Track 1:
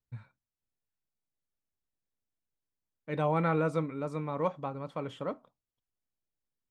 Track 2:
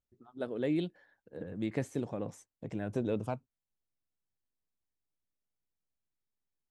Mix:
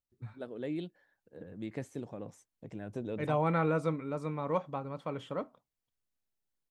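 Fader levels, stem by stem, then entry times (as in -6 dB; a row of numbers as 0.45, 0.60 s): -1.0, -5.5 dB; 0.10, 0.00 s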